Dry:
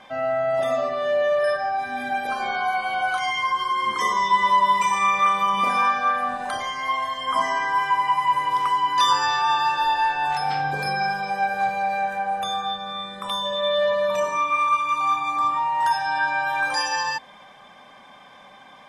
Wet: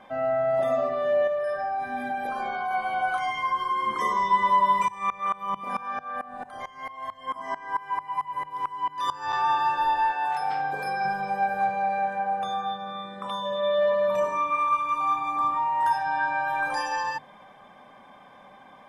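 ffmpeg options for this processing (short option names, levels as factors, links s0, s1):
-filter_complex "[0:a]asettb=1/sr,asplit=3[s0][s1][s2];[s0]atrim=end=1.274[s3];[s1]atrim=start=1.27:end=2.71,asetpts=PTS-STARTPTS,afade=t=in:d=0.004:c=qsin,afade=t=out:st=1.436:d=0.004:c=qsin,acompressor=threshold=0.0708:ratio=6:attack=3.2:release=140:knee=1:detection=peak[s4];[s2]atrim=start=2.706[s5];[s3][s4]acrossfade=d=0.004:c1=hsin:c2=qsin[s6];[s6][s5]acrossfade=d=0.004:c1=qsin:c2=hsin,asettb=1/sr,asplit=3[s7][s8][s9];[s7]atrim=end=4.884[s10];[s8]atrim=start=4.88:end=9.33,asetpts=PTS-STARTPTS,afade=t=in:d=0.004:c=qsin,afade=t=out:st=4.446:d=0.004:c=qsin,aeval=exprs='val(0)*pow(10,-21*if(lt(mod(-4.5*n/s,1),2*abs(-4.5)/1000),1-mod(-4.5*n/s,1)/(2*abs(-4.5)/1000),(mod(-4.5*n/s,1)-2*abs(-4.5)/1000)/(1-2*abs(-4.5)/1000))/20)':c=same[s11];[s9]atrim=start=9.326[s12];[s10][s11]acrossfade=d=0.004:c1=hsin:c2=qsin[s13];[s13][s12]acrossfade=d=0.004:c1=qsin:c2=hsin,asettb=1/sr,asplit=3[s14][s15][s16];[s14]atrim=end=10.114[s17];[s15]atrim=start=10.11:end=11.05,asetpts=PTS-STARTPTS,afade=t=in:d=0.004:c=qsin,afade=t=out:st=0.936:d=0.004:c=qsin,highpass=f=440:p=1[s18];[s16]atrim=start=11.046[s19];[s17][s18]acrossfade=d=0.004:c1=hsin:c2=qsin[s20];[s20][s19]acrossfade=d=0.004:c1=qsin:c2=hsin,asettb=1/sr,asplit=3[s21][s22][s23];[s21]atrim=end=11.654[s24];[s22]atrim=start=11.65:end=14.08,asetpts=PTS-STARTPTS,afade=t=in:d=0.004:c=qsin,afade=t=out:st=2.426:d=0.004:c=qsin,highpass=110,lowpass=7600[s25];[s23]atrim=start=14.076[s26];[s24][s25]acrossfade=d=0.004:c1=hsin:c2=qsin[s27];[s27][s26]acrossfade=d=0.004:c1=qsin:c2=hsin,asettb=1/sr,asplit=3[s28][s29][s30];[s28]atrim=end=16.034[s31];[s29]atrim=start=16.03:end=16.48,asetpts=PTS-STARTPTS,afade=t=in:d=0.004:c=qsin,afade=t=out:st=0.446:d=0.004:c=qsin,acrossover=split=5400[s32][s33];[s33]acompressor=threshold=0.00224:ratio=4:attack=1:release=60[s34];[s32][s34]amix=inputs=2:normalize=0[s35];[s30]atrim=start=16.476[s36];[s31][s35]acrossfade=d=0.004:c1=hsin:c2=qsin[s37];[s37][s36]acrossfade=d=0.004:c1=qsin:c2=hsin,equalizer=f=5200:t=o:w=2.7:g=-12,bandreject=f=50:t=h:w=6,bandreject=f=100:t=h:w=6,bandreject=f=150:t=h:w=6"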